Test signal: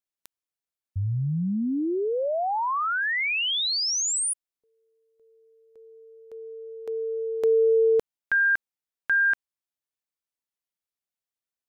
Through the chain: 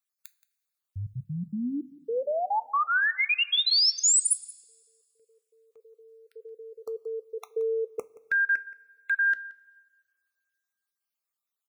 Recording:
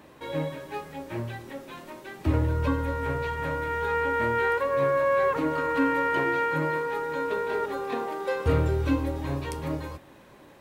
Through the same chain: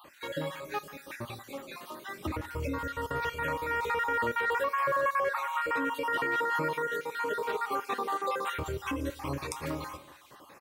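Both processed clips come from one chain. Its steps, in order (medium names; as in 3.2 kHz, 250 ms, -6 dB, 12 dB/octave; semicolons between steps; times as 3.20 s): random holes in the spectrogram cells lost 42%; peaking EQ 1.2 kHz +9 dB 0.21 oct; peak limiter -20.5 dBFS; tilt EQ +2 dB/octave; delay 175 ms -20 dB; two-slope reverb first 0.23 s, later 1.7 s, from -18 dB, DRR 13 dB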